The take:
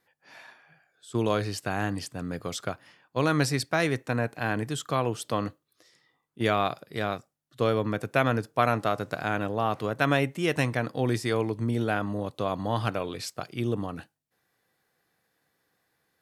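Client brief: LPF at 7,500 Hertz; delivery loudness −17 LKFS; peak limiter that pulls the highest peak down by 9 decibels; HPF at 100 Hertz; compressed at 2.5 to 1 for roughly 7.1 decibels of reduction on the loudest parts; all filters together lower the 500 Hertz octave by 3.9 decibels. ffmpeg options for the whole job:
ffmpeg -i in.wav -af "highpass=100,lowpass=7500,equalizer=frequency=500:width_type=o:gain=-5,acompressor=threshold=-30dB:ratio=2.5,volume=19.5dB,alimiter=limit=-3dB:level=0:latency=1" out.wav

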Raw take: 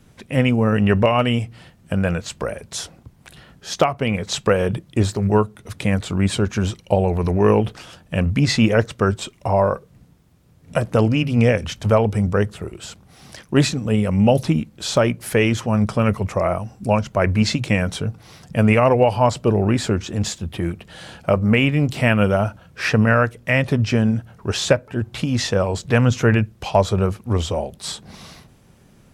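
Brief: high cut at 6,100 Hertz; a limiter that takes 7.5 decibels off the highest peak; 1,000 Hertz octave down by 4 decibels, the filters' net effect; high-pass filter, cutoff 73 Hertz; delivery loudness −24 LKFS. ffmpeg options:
ffmpeg -i in.wav -af "highpass=73,lowpass=6100,equalizer=frequency=1000:width_type=o:gain=-5.5,volume=-1dB,alimiter=limit=-11dB:level=0:latency=1" out.wav

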